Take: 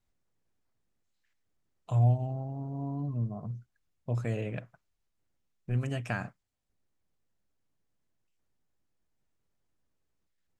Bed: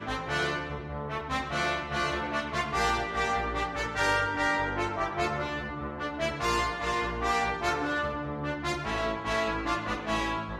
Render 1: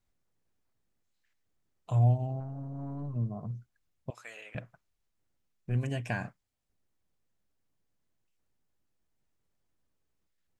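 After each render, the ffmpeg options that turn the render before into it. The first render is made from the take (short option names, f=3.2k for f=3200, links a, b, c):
-filter_complex "[0:a]asettb=1/sr,asplit=3[a][b][c];[a]atrim=end=2.404[d];[b]atrim=start=2.4:end=3.16,asetpts=PTS-STARTPTS,afade=t=in:d=0.004:c=qsin,afade=t=out:st=0.756:d=0.004:c=qsin,aeval=exprs='(tanh(35.5*val(0)+0.4)-tanh(0.4))/35.5':c=same[e];[c]atrim=start=3.156[f];[d][e]acrossfade=d=0.004:c1=hsin:c2=qsin[g];[g][f]acrossfade=d=0.004:c1=qsin:c2=hsin,asettb=1/sr,asplit=3[h][i][j];[h]atrim=end=4.104[k];[i]atrim=start=4.1:end=4.55,asetpts=PTS-STARTPTS,afade=t=in:d=0.004:c=qsin,afade=t=out:st=0.446:d=0.004:c=qsin,highpass=1.3k[l];[j]atrim=start=4.546[m];[k][l]acrossfade=d=0.004:c1=hsin:c2=qsin[n];[n][m]acrossfade=d=0.004:c1=qsin:c2=hsin,asettb=1/sr,asplit=3[o][p][q];[o]atrim=end=5.754[r];[p]atrim=start=5.75:end=6.24,asetpts=PTS-STARTPTS,afade=t=in:d=0.004:c=qsin,afade=t=out:st=0.486:d=0.004:c=qsin,asuperstop=centerf=1300:order=20:qfactor=5.8[s];[q]atrim=start=6.236[t];[r][s]acrossfade=d=0.004:c1=hsin:c2=qsin[u];[u][t]acrossfade=d=0.004:c1=qsin:c2=hsin"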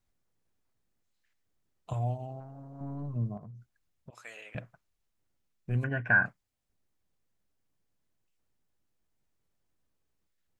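-filter_complex "[0:a]asettb=1/sr,asplit=3[a][b][c];[a]atrim=end=1.934[d];[b]atrim=start=1.93:end=2.81,asetpts=PTS-STARTPTS,afade=t=in:d=0.004:c=qsin,afade=t=out:st=0.876:d=0.004:c=qsin,lowshelf=f=320:g=-10[e];[c]atrim=start=2.806[f];[d][e]acrossfade=d=0.004:c1=hsin:c2=qsin[g];[g][f]acrossfade=d=0.004:c1=qsin:c2=hsin,asettb=1/sr,asplit=3[h][i][j];[h]atrim=end=3.374[k];[i]atrim=start=3.37:end=4.13,asetpts=PTS-STARTPTS,afade=t=in:d=0.004:c=qsin,afade=t=out:st=0.756:d=0.004:c=qsin,acompressor=threshold=-44dB:ratio=6:attack=3.2:release=140:knee=1:detection=peak[l];[j]atrim=start=4.126[m];[k][l]acrossfade=d=0.004:c1=hsin:c2=qsin[n];[n][m]acrossfade=d=0.004:c1=qsin:c2=hsin,asettb=1/sr,asplit=3[o][p][q];[o]atrim=end=5.844[r];[p]atrim=start=5.84:end=6.26,asetpts=PTS-STARTPTS,afade=t=in:d=0.004:c=qsin,afade=t=out:st=0.416:d=0.004:c=qsin,lowpass=f=1.5k:t=q:w=12[s];[q]atrim=start=6.256[t];[r][s]acrossfade=d=0.004:c1=hsin:c2=qsin[u];[u][t]acrossfade=d=0.004:c1=qsin:c2=hsin"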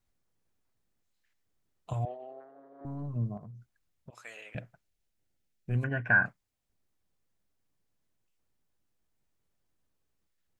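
-filter_complex "[0:a]asettb=1/sr,asplit=3[a][b][c];[a]atrim=end=2.054[d];[b]atrim=start=2.05:end=2.85,asetpts=PTS-STARTPTS,afade=t=in:d=0.004:c=qsin,afade=t=out:st=0.796:d=0.004:c=qsin,highpass=f=350:w=0.5412,highpass=f=350:w=1.3066,equalizer=f=420:t=q:w=4:g=6,equalizer=f=890:t=q:w=4:g=-9,equalizer=f=1.8k:t=q:w=4:g=10,equalizer=f=2.7k:t=q:w=4:g=-7,lowpass=f=3.4k:w=0.5412,lowpass=f=3.4k:w=1.3066[e];[c]atrim=start=2.846[f];[d][e]acrossfade=d=0.004:c1=hsin:c2=qsin[g];[g][f]acrossfade=d=0.004:c1=qsin:c2=hsin,asettb=1/sr,asplit=3[h][i][j];[h]atrim=end=4.534[k];[i]atrim=start=4.53:end=5.7,asetpts=PTS-STARTPTS,afade=t=in:d=0.004:c=qsin,afade=t=out:st=1.166:d=0.004:c=qsin,equalizer=f=1.1k:w=3.2:g=-9.5[l];[j]atrim=start=5.696[m];[k][l]acrossfade=d=0.004:c1=hsin:c2=qsin[n];[n][m]acrossfade=d=0.004:c1=qsin:c2=hsin"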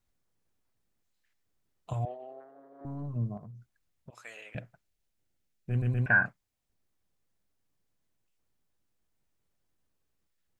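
-filter_complex "[0:a]asplit=4[a][b][c][d];[a]atrim=end=5.822[e];[b]atrim=start=5.698:end=5.822[f];[c]atrim=start=5.698:end=5.822[g];[d]atrim=start=6.058[h];[e][f]acrossfade=d=0.004:c1=hsin:c2=hsin[i];[i][g]acrossfade=d=0.004:c1=hsin:c2=hsin[j];[j][h]acrossfade=d=0.004:c1=hsin:c2=hsin"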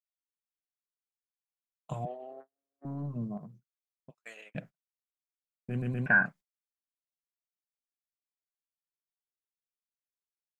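-af "agate=range=-40dB:threshold=-47dB:ratio=16:detection=peak,lowshelf=f=130:t=q:w=3:g=-6.5"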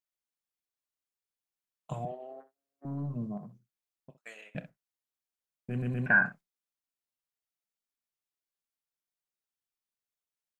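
-af "aecho=1:1:29|64:0.133|0.188"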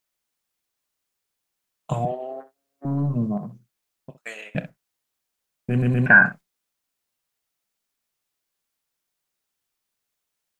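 -af "volume=12dB,alimiter=limit=-3dB:level=0:latency=1"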